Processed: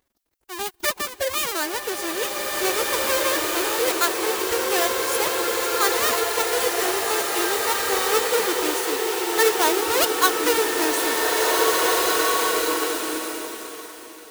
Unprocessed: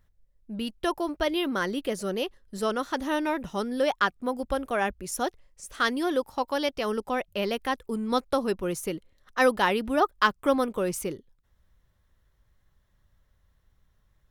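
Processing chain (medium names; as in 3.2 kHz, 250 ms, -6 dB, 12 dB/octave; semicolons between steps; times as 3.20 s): square wave that keeps the level; modulation noise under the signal 30 dB; treble shelf 7.2 kHz +7 dB; formant-preserving pitch shift +9.5 st; high-pass 510 Hz 6 dB/octave; swelling reverb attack 2140 ms, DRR -3 dB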